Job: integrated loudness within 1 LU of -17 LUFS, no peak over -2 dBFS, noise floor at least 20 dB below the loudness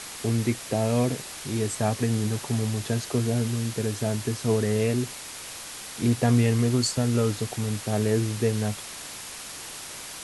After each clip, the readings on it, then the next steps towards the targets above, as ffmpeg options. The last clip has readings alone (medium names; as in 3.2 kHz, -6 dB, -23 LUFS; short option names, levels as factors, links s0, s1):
noise floor -39 dBFS; noise floor target -47 dBFS; loudness -26.5 LUFS; peak level -11.0 dBFS; loudness target -17.0 LUFS
-> -af "afftdn=nr=8:nf=-39"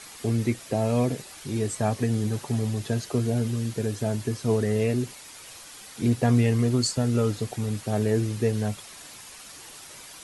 noise floor -45 dBFS; noise floor target -46 dBFS
-> -af "afftdn=nr=6:nf=-45"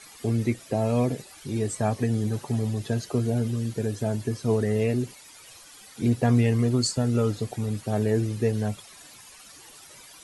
noise floor -49 dBFS; loudness -26.5 LUFS; peak level -12.0 dBFS; loudness target -17.0 LUFS
-> -af "volume=2.99"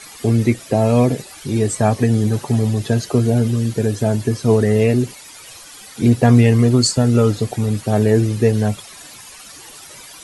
loudness -16.5 LUFS; peak level -2.5 dBFS; noise floor -39 dBFS